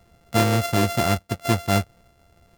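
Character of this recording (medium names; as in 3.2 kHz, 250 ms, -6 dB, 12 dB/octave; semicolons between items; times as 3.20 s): a buzz of ramps at a fixed pitch in blocks of 64 samples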